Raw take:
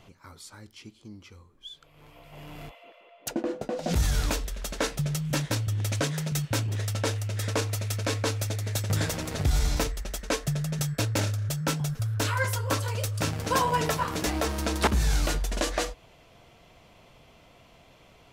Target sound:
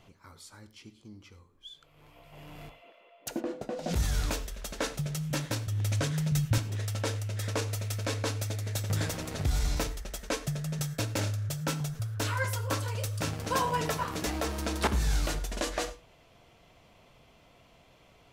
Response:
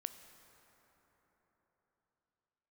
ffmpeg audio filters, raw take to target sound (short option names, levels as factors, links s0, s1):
-filter_complex "[0:a]asettb=1/sr,asplit=3[s0][s1][s2];[s0]atrim=end=5.704[s3];[s1]atrim=start=5.7:end=6.58,asetpts=PTS-STARTPTS,afade=t=in:d=0.004:c=qsin,afade=t=out:st=0.876:d=0.004:c=qsin,asubboost=boost=11.5:cutoff=190[s4];[s2]atrim=start=6.576[s5];[s3][s4]acrossfade=d=0.004:c1=hsin:c2=qsin[s6];[s6][s5]acrossfade=d=0.004:c1=qsin:c2=hsin[s7];[1:a]atrim=start_sample=2205,afade=t=out:st=0.18:d=0.01,atrim=end_sample=8379,asetrate=48510,aresample=44100[s8];[s7][s8]afir=irnorm=-1:irlink=0"